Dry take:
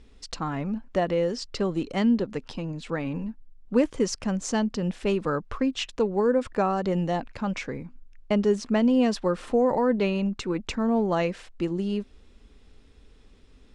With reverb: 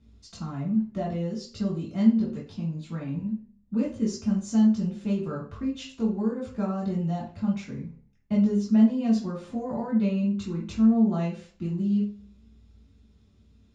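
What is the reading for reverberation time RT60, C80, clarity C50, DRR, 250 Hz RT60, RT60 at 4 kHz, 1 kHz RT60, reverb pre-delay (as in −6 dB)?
0.45 s, 12.0 dB, 6.0 dB, −5.5 dB, 0.55 s, 0.40 s, 0.40 s, 3 ms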